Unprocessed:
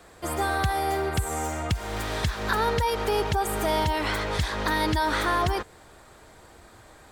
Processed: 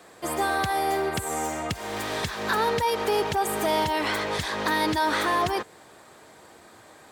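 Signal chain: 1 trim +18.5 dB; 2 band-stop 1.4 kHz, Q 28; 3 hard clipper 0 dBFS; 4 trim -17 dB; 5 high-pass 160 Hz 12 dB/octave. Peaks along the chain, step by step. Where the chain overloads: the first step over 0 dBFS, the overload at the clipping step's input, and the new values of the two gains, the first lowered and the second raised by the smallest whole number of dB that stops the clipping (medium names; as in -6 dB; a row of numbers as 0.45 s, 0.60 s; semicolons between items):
+6.5 dBFS, +6.0 dBFS, 0.0 dBFS, -17.0 dBFS, -12.5 dBFS; step 1, 6.0 dB; step 1 +12.5 dB, step 4 -11 dB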